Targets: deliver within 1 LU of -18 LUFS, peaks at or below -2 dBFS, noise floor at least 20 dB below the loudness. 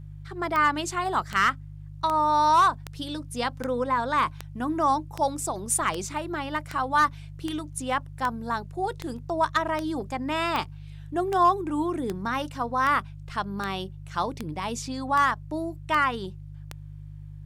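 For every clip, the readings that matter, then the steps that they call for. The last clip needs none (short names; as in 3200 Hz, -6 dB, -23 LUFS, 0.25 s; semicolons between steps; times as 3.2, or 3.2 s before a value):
clicks 22; hum 50 Hz; harmonics up to 150 Hz; hum level -39 dBFS; loudness -26.5 LUFS; peak -12.0 dBFS; loudness target -18.0 LUFS
-> de-click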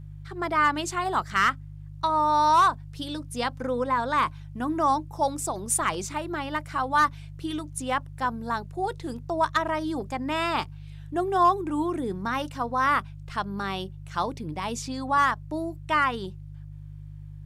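clicks 0; hum 50 Hz; harmonics up to 150 Hz; hum level -39 dBFS
-> de-hum 50 Hz, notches 3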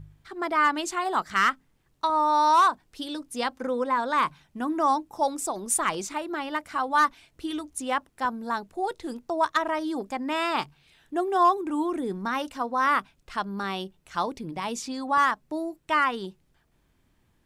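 hum none; loudness -26.5 LUFS; peak -12.5 dBFS; loudness target -18.0 LUFS
-> gain +8.5 dB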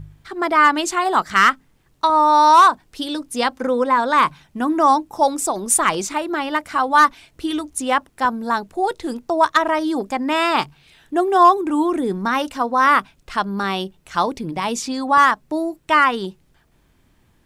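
loudness -18.0 LUFS; peak -4.0 dBFS; noise floor -59 dBFS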